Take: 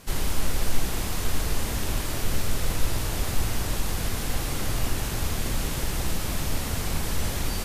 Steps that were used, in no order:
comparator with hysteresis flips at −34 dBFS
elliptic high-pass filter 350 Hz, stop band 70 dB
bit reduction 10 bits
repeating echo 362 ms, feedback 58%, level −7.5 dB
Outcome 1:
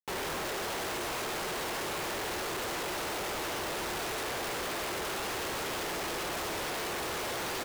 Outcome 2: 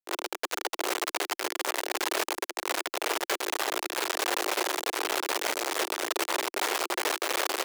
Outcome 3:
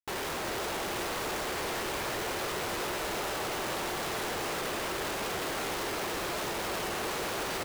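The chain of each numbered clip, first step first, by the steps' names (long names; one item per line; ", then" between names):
elliptic high-pass filter, then bit reduction, then repeating echo, then comparator with hysteresis
repeating echo, then bit reduction, then comparator with hysteresis, then elliptic high-pass filter
bit reduction, then elliptic high-pass filter, then comparator with hysteresis, then repeating echo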